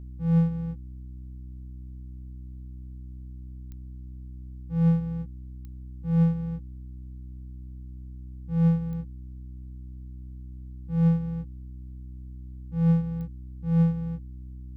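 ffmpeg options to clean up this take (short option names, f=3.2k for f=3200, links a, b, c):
-af "adeclick=t=4,bandreject=f=63.1:t=h:w=4,bandreject=f=126.2:t=h:w=4,bandreject=f=189.3:t=h:w=4,bandreject=f=252.4:t=h:w=4,bandreject=f=315.5:t=h:w=4"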